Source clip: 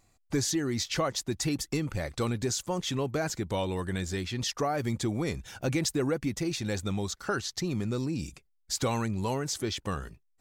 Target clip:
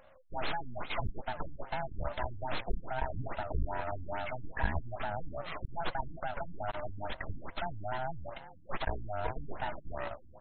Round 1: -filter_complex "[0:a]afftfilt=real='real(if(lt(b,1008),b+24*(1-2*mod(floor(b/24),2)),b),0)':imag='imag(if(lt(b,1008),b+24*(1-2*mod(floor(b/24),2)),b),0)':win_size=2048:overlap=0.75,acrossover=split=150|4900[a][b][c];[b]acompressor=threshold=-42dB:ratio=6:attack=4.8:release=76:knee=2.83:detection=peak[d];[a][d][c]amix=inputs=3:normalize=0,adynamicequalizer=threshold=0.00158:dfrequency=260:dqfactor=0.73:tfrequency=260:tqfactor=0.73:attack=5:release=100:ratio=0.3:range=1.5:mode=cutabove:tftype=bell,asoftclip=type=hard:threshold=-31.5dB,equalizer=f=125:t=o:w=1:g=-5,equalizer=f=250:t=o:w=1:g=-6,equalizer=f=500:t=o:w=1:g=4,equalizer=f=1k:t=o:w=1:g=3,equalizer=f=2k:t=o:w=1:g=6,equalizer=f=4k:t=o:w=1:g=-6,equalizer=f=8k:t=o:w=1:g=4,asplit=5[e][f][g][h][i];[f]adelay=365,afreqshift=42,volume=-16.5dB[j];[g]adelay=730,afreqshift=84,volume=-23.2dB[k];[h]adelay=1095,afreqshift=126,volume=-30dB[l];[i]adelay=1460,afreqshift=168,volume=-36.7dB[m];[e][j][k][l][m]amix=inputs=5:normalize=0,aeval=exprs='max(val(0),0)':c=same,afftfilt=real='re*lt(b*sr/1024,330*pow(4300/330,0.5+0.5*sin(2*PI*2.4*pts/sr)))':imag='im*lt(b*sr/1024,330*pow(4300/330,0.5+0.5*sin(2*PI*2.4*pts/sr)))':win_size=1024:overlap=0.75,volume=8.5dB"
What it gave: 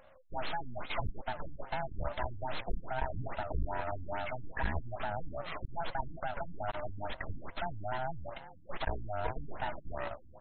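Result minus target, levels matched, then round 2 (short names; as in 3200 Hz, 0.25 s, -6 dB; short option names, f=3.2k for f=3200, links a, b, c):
hard clip: distortion +27 dB
-filter_complex "[0:a]afftfilt=real='real(if(lt(b,1008),b+24*(1-2*mod(floor(b/24),2)),b),0)':imag='imag(if(lt(b,1008),b+24*(1-2*mod(floor(b/24),2)),b),0)':win_size=2048:overlap=0.75,acrossover=split=150|4900[a][b][c];[b]acompressor=threshold=-42dB:ratio=6:attack=4.8:release=76:knee=2.83:detection=peak[d];[a][d][c]amix=inputs=3:normalize=0,adynamicequalizer=threshold=0.00158:dfrequency=260:dqfactor=0.73:tfrequency=260:tqfactor=0.73:attack=5:release=100:ratio=0.3:range=1.5:mode=cutabove:tftype=bell,asoftclip=type=hard:threshold=-22.5dB,equalizer=f=125:t=o:w=1:g=-5,equalizer=f=250:t=o:w=1:g=-6,equalizer=f=500:t=o:w=1:g=4,equalizer=f=1k:t=o:w=1:g=3,equalizer=f=2k:t=o:w=1:g=6,equalizer=f=4k:t=o:w=1:g=-6,equalizer=f=8k:t=o:w=1:g=4,asplit=5[e][f][g][h][i];[f]adelay=365,afreqshift=42,volume=-16.5dB[j];[g]adelay=730,afreqshift=84,volume=-23.2dB[k];[h]adelay=1095,afreqshift=126,volume=-30dB[l];[i]adelay=1460,afreqshift=168,volume=-36.7dB[m];[e][j][k][l][m]amix=inputs=5:normalize=0,aeval=exprs='max(val(0),0)':c=same,afftfilt=real='re*lt(b*sr/1024,330*pow(4300/330,0.5+0.5*sin(2*PI*2.4*pts/sr)))':imag='im*lt(b*sr/1024,330*pow(4300/330,0.5+0.5*sin(2*PI*2.4*pts/sr)))':win_size=1024:overlap=0.75,volume=8.5dB"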